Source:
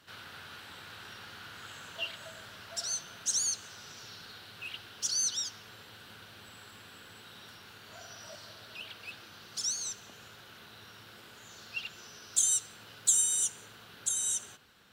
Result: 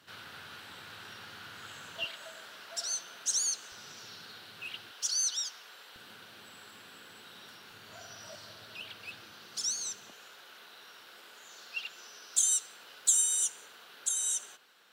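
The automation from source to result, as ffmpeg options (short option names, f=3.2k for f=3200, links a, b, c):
-af "asetnsamples=n=441:p=0,asendcmd='2.04 highpass f 310;3.72 highpass f 140;4.91 highpass f 530;5.96 highpass f 180;7.71 highpass f 81;9.31 highpass f 180;10.11 highpass f 420',highpass=95"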